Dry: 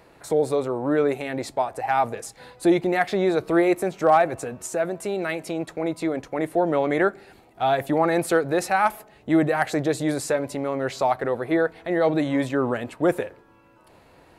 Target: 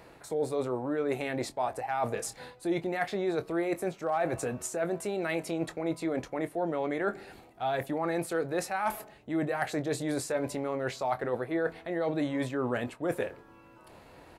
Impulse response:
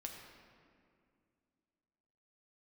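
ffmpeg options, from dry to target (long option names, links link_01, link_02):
-filter_complex "[0:a]areverse,acompressor=threshold=-28dB:ratio=6,areverse,asplit=2[link_01][link_02];[link_02]adelay=24,volume=-12.5dB[link_03];[link_01][link_03]amix=inputs=2:normalize=0"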